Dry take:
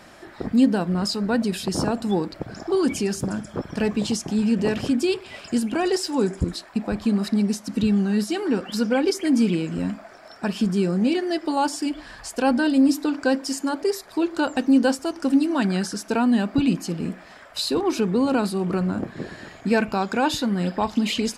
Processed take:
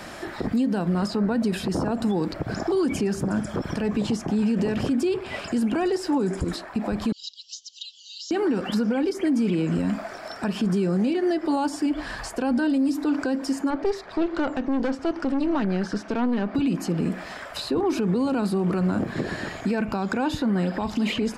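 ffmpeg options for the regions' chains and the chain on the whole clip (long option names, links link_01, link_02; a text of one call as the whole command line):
ffmpeg -i in.wav -filter_complex "[0:a]asettb=1/sr,asplit=3[link_01][link_02][link_03];[link_01]atrim=end=7.124[link_04];[link_02]atrim=start=7.12:end=8.31,asetpts=PTS-STARTPTS,afade=type=in:duration=0.004:curve=qsin,afade=type=out:start_time=1.186:duration=0.004:curve=qsin,asuperpass=centerf=4700:order=20:qfactor=1.1,aecho=1:1:4.2:0.99,atrim=end_sample=52479[link_05];[link_03]atrim=start=8.306[link_06];[link_04][link_05]acrossfade=duration=0.004:curve1=hsin:curve2=qsin[link_07];[link_07][link_06]acrossfade=duration=0.004:curve1=qsin:curve2=hsin,asettb=1/sr,asplit=3[link_08][link_09][link_10];[link_08]atrim=end=13.704[link_11];[link_09]atrim=start=13.7:end=16.55,asetpts=PTS-STARTPTS,afade=type=in:duration=0.004:curve=qsin,afade=type=out:start_time=2.846:duration=0.004:curve=qsin,lowpass=3400,aeval=exprs='(tanh(8.91*val(0)+0.55)-tanh(0.55))/8.91':channel_layout=same[link_12];[link_10]atrim=start=16.546[link_13];[link_11][link_12]acrossfade=duration=0.004:curve1=hsin:curve2=qsin[link_14];[link_14][link_13]acrossfade=duration=0.004:curve1=qsin:curve2=hsin,acrossover=split=290|2100[link_15][link_16][link_17];[link_15]acompressor=threshold=-27dB:ratio=4[link_18];[link_16]acompressor=threshold=-28dB:ratio=4[link_19];[link_17]acompressor=threshold=-48dB:ratio=4[link_20];[link_18][link_19][link_20]amix=inputs=3:normalize=0,alimiter=level_in=1dB:limit=-24dB:level=0:latency=1:release=83,volume=-1dB,volume=8.5dB" out.wav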